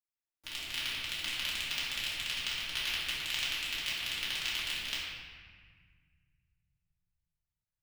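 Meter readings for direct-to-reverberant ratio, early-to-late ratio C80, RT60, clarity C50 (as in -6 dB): -9.5 dB, 0.5 dB, 1.6 s, -1.5 dB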